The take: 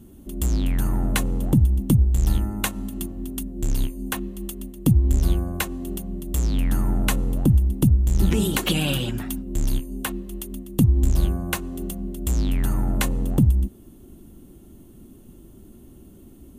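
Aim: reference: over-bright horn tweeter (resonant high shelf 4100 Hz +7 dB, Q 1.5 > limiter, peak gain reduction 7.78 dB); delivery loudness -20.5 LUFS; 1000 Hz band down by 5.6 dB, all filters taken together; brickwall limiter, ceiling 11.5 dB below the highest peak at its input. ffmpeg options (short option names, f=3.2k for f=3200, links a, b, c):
-af "equalizer=f=1k:t=o:g=-7,alimiter=limit=-18dB:level=0:latency=1,highshelf=f=4.1k:t=q:w=1.5:g=7,volume=8.5dB,alimiter=limit=-10dB:level=0:latency=1"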